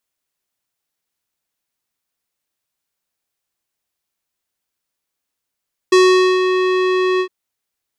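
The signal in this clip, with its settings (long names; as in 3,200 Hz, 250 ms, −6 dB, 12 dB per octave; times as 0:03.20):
subtractive voice square F#4 12 dB per octave, low-pass 3,200 Hz, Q 1.1, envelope 1 octave, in 0.60 s, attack 7.3 ms, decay 0.46 s, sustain −7 dB, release 0.08 s, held 1.28 s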